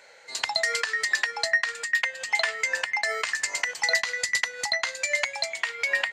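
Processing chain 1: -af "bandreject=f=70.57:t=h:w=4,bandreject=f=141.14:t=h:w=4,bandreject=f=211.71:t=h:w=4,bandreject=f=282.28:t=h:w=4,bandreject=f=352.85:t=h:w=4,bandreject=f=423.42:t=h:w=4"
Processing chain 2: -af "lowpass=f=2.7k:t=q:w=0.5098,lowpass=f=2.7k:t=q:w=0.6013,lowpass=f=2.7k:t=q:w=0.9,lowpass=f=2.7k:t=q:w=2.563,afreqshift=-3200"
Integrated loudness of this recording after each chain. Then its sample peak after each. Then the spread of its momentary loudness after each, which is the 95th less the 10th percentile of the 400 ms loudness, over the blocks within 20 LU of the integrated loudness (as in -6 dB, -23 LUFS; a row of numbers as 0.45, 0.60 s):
-25.5, -28.0 LUFS; -10.5, -12.0 dBFS; 4, 5 LU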